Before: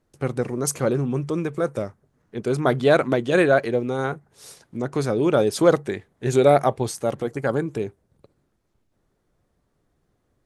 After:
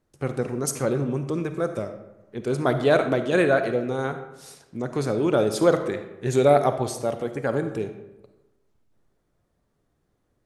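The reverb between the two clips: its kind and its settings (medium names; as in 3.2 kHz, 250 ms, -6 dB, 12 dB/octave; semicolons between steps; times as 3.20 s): algorithmic reverb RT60 1 s, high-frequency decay 0.6×, pre-delay 10 ms, DRR 8 dB; trim -2.5 dB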